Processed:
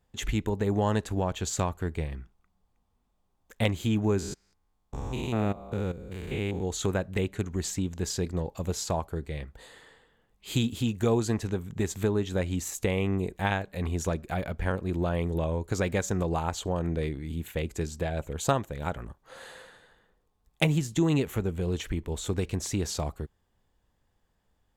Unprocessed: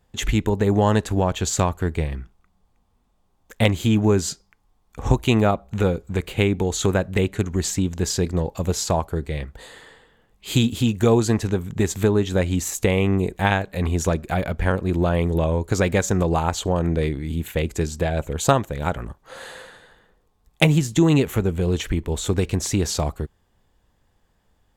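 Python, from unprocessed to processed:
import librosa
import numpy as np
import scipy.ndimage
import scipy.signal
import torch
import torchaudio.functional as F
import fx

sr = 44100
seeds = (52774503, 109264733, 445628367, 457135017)

y = fx.spec_steps(x, sr, hold_ms=200, at=(4.18, 6.62), fade=0.02)
y = y * librosa.db_to_amplitude(-8.0)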